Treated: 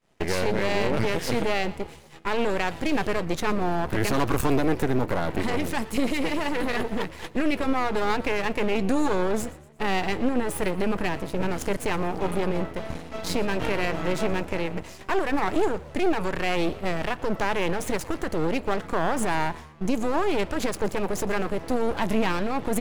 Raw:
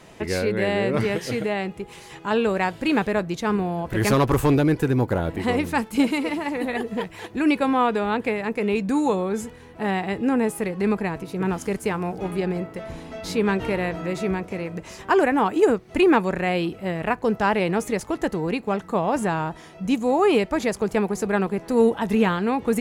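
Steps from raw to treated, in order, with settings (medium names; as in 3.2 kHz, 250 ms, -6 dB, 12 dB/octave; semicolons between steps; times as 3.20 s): expander -33 dBFS; peak limiter -18 dBFS, peak gain reduction 11 dB; half-wave rectifier; frequency-shifting echo 118 ms, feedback 46%, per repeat +74 Hz, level -20 dB; trim +6 dB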